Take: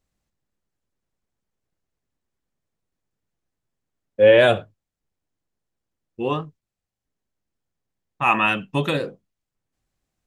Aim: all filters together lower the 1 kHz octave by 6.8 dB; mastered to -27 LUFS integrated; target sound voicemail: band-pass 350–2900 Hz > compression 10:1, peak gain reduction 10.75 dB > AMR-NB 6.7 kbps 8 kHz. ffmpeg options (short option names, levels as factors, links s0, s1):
-af "highpass=350,lowpass=2900,equalizer=f=1000:t=o:g=-9,acompressor=threshold=0.0794:ratio=10,volume=1.5" -ar 8000 -c:a libopencore_amrnb -b:a 6700